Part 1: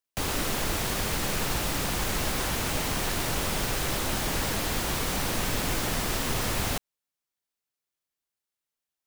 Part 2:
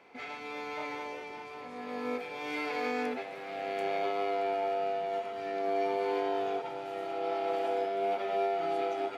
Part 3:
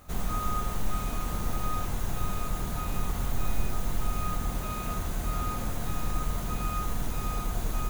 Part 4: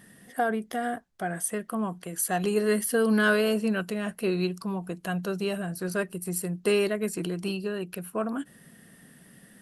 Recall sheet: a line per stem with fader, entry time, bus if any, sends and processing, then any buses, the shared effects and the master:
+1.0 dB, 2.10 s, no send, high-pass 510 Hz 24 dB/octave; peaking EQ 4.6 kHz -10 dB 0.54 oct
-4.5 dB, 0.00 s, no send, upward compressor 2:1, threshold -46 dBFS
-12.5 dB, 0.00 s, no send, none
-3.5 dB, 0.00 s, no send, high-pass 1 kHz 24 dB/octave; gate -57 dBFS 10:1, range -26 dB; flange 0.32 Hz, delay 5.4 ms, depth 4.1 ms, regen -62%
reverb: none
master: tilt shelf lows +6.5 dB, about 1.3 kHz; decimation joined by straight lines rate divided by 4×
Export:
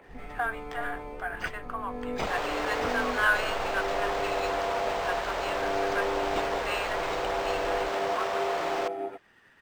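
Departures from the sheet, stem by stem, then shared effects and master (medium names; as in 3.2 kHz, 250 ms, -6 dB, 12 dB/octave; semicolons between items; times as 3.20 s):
stem 3 -12.5 dB -> -21.0 dB; stem 4 -3.5 dB -> +8.0 dB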